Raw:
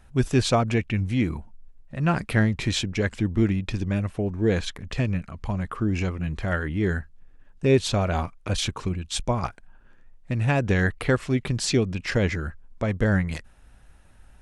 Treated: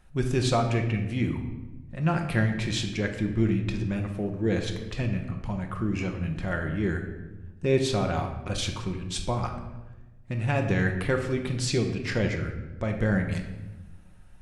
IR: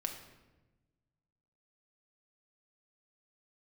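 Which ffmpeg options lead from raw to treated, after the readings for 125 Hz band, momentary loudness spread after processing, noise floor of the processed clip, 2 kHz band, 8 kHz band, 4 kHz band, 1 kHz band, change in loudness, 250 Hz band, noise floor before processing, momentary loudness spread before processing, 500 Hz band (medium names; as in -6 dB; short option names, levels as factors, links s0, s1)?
-2.5 dB, 10 LU, -48 dBFS, -3.0 dB, -4.0 dB, -3.5 dB, -2.5 dB, -3.0 dB, -2.5 dB, -52 dBFS, 9 LU, -2.5 dB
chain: -filter_complex "[1:a]atrim=start_sample=2205[s0];[0:a][s0]afir=irnorm=-1:irlink=0,volume=0.668"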